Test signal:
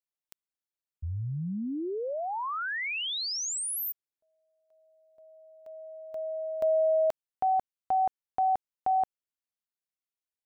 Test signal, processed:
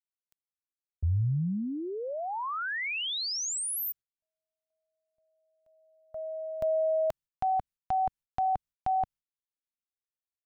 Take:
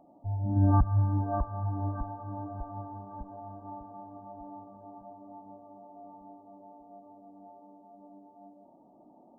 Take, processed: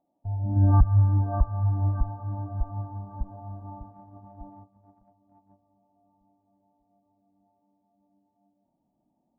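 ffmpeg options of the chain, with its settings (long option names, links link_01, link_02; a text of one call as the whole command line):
ffmpeg -i in.wav -af "asubboost=boost=6:cutoff=160,agate=range=-18dB:threshold=-40dB:ratio=3:release=176:detection=rms" out.wav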